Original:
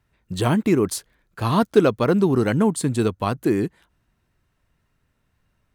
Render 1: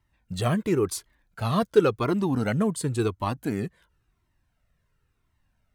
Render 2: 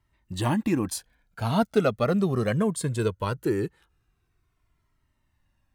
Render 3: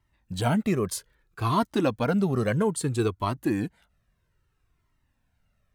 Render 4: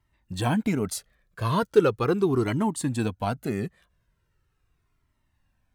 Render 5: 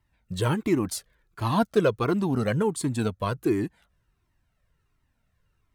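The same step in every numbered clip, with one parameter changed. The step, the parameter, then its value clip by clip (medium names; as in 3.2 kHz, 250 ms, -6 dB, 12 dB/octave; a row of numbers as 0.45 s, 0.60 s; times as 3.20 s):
Shepard-style flanger, rate: 0.94 Hz, 0.2 Hz, 0.61 Hz, 0.39 Hz, 1.4 Hz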